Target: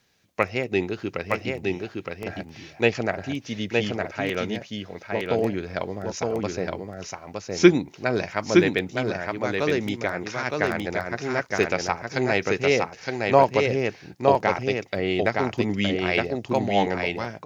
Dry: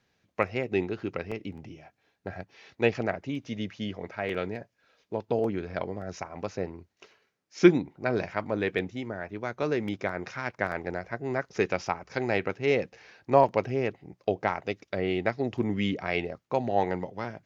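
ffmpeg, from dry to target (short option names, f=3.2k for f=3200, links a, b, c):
-filter_complex "[0:a]highshelf=f=4k:g=11.5,asplit=2[a][b];[b]aecho=0:1:915:0.708[c];[a][c]amix=inputs=2:normalize=0,volume=3dB"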